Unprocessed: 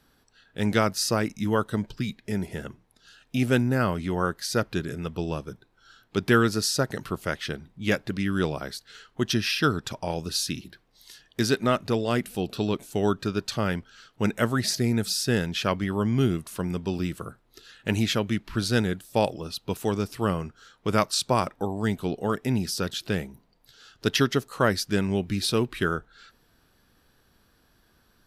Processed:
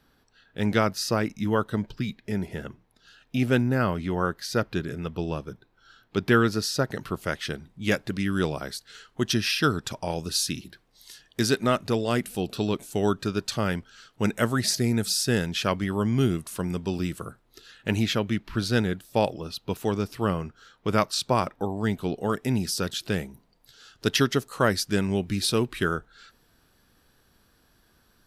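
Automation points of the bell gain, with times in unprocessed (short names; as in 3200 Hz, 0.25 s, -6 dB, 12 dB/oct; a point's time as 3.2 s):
bell 8900 Hz 1.2 oct
6.85 s -6.5 dB
7.47 s +3.5 dB
17.18 s +3.5 dB
18.15 s -4.5 dB
21.87 s -4.5 dB
22.38 s +3 dB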